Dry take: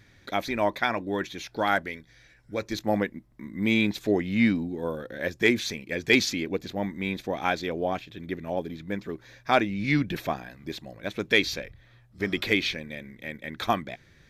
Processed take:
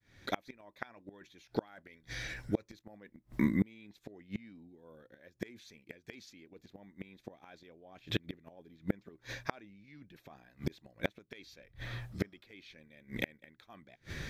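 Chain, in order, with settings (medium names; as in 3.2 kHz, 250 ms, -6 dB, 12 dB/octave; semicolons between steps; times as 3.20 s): fade-in on the opening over 1.34 s; reverse; compression 5:1, threshold -34 dBFS, peak gain reduction 17 dB; reverse; inverted gate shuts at -32 dBFS, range -34 dB; trim +15 dB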